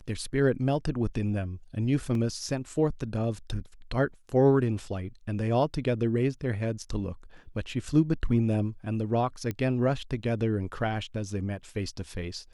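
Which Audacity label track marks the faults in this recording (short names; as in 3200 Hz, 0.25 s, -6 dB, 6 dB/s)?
2.150000	2.150000	gap 2.1 ms
9.510000	9.510000	pop -19 dBFS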